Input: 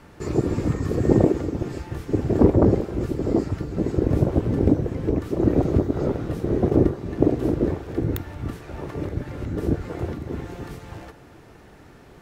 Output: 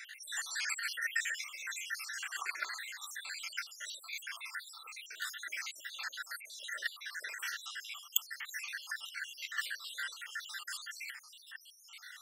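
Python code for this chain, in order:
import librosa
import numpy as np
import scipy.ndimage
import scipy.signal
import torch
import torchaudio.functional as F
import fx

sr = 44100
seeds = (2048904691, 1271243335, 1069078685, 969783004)

y = fx.spec_dropout(x, sr, seeds[0], share_pct=70)
y = scipy.signal.sosfilt(scipy.signal.cheby1(4, 1.0, 1600.0, 'highpass', fs=sr, output='sos'), y)
y = fx.comb_cascade(y, sr, direction='falling', hz=0.36)
y = F.gain(torch.from_numpy(y), 18.0).numpy()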